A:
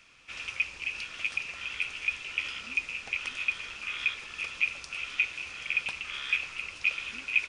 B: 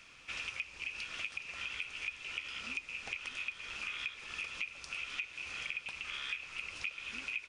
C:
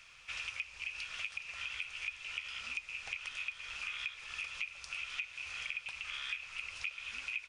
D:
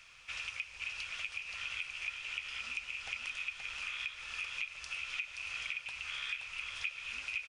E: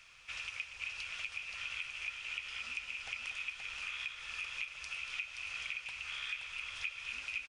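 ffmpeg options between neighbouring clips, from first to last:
ffmpeg -i in.wav -af "acompressor=threshold=-39dB:ratio=6,volume=1.5dB" out.wav
ffmpeg -i in.wav -af "equalizer=frequency=280:width_type=o:width=1.6:gain=-14" out.wav
ffmpeg -i in.wav -af "aecho=1:1:148|525:0.141|0.531" out.wav
ffmpeg -i in.wav -af "aecho=1:1:237:0.316,volume=-1.5dB" out.wav

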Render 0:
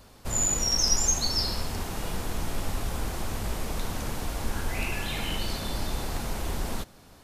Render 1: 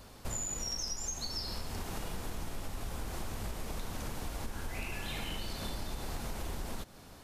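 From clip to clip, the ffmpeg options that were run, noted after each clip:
ffmpeg -i in.wav -af "acompressor=threshold=-34dB:ratio=10" out.wav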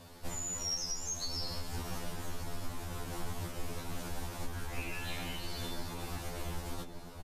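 ffmpeg -i in.wav -filter_complex "[0:a]asplit=2[link_01][link_02];[link_02]adelay=1166,volume=-7dB,highshelf=frequency=4000:gain=-26.2[link_03];[link_01][link_03]amix=inputs=2:normalize=0,afftfilt=real='re*2*eq(mod(b,4),0)':imag='im*2*eq(mod(b,4),0)':win_size=2048:overlap=0.75,volume=2dB" out.wav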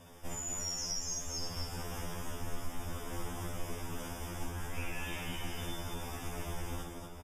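ffmpeg -i in.wav -filter_complex "[0:a]asuperstop=centerf=4200:order=12:qfactor=3.8,asplit=2[link_01][link_02];[link_02]aecho=0:1:58.31|239.1:0.562|0.631[link_03];[link_01][link_03]amix=inputs=2:normalize=0,volume=-2dB" out.wav

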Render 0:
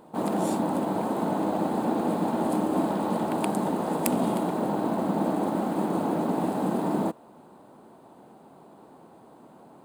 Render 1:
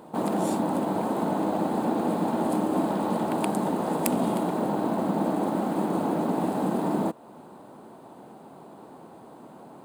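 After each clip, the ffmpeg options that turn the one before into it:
ffmpeg -i in.wav -filter_complex "[0:a]highpass=60,asplit=2[link_01][link_02];[link_02]acompressor=threshold=-35dB:ratio=6,volume=1dB[link_03];[link_01][link_03]amix=inputs=2:normalize=0,volume=-2dB" out.wav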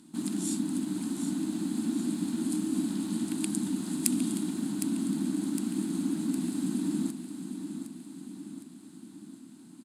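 ffmpeg -i in.wav -filter_complex "[0:a]firequalizer=gain_entry='entry(140,0);entry(280,10);entry(480,-24);entry(1500,-2);entry(4200,11);entry(7500,15);entry(11000,13);entry(15000,-7)':delay=0.05:min_phase=1,asplit=2[link_01][link_02];[link_02]aecho=0:1:760|1520|2280|3040|3800|4560:0.355|0.195|0.107|0.059|0.0325|0.0179[link_03];[link_01][link_03]amix=inputs=2:normalize=0,volume=-9dB" out.wav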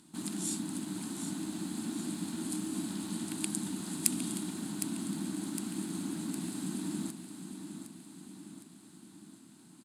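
ffmpeg -i in.wav -af "equalizer=frequency=260:width=1.9:gain=-9.5" out.wav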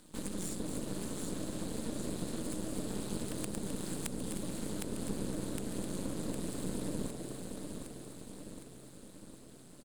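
ffmpeg -i in.wav -filter_complex "[0:a]acrossover=split=230[link_01][link_02];[link_02]acompressor=threshold=-41dB:ratio=5[link_03];[link_01][link_03]amix=inputs=2:normalize=0,aeval=exprs='max(val(0),0)':channel_layout=same,asplit=4[link_04][link_05][link_06][link_07];[link_05]adelay=259,afreqshift=130,volume=-9.5dB[link_08];[link_06]adelay=518,afreqshift=260,volume=-19.7dB[link_09];[link_07]adelay=777,afreqshift=390,volume=-29.8dB[link_10];[link_04][link_08][link_09][link_10]amix=inputs=4:normalize=0,volume=4.5dB" out.wav

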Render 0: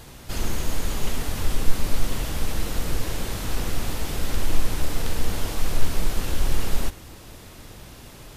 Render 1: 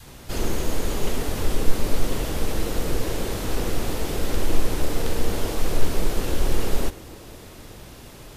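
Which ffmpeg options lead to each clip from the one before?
ffmpeg -i in.wav -af "adynamicequalizer=threshold=0.00316:dfrequency=420:dqfactor=1:tfrequency=420:tqfactor=1:attack=5:release=100:ratio=0.375:range=4:mode=boostabove:tftype=bell" out.wav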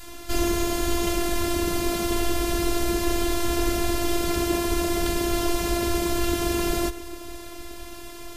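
ffmpeg -i in.wav -af "afftfilt=real='hypot(re,im)*cos(PI*b)':imag='0':win_size=512:overlap=0.75,afftfilt=real='re*lt(hypot(re,im),0.891)':imag='im*lt(hypot(re,im),0.891)':win_size=1024:overlap=0.75,volume=7.5dB" out.wav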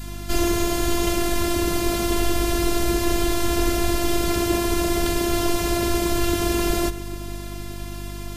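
ffmpeg -i in.wav -af "aeval=exprs='val(0)+0.0178*(sin(2*PI*50*n/s)+sin(2*PI*2*50*n/s)/2+sin(2*PI*3*50*n/s)/3+sin(2*PI*4*50*n/s)/4+sin(2*PI*5*50*n/s)/5)':channel_layout=same,volume=2.5dB" out.wav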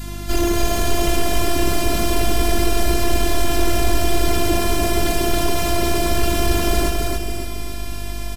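ffmpeg -i in.wav -af "asoftclip=type=tanh:threshold=-8.5dB,aecho=1:1:277|554|831|1108|1385|1662:0.708|0.326|0.15|0.0689|0.0317|0.0146,volume=3.5dB" out.wav

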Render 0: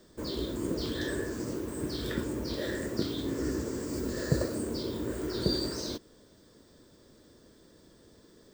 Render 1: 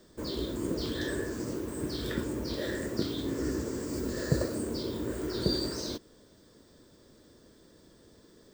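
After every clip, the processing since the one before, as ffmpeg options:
ffmpeg -i in.wav -af anull out.wav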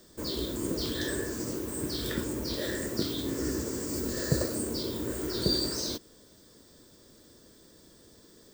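ffmpeg -i in.wav -af "highshelf=frequency=4800:gain=10" out.wav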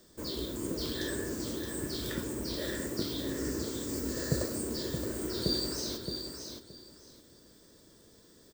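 ffmpeg -i in.wav -af "aecho=1:1:621|1242|1863:0.447|0.0893|0.0179,volume=-3.5dB" out.wav

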